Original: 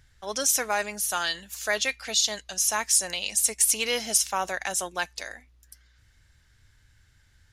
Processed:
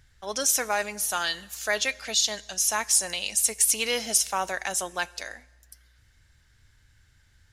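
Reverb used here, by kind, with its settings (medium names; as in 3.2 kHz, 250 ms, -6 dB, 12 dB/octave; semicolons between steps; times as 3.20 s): plate-style reverb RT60 1.3 s, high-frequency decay 1×, DRR 20 dB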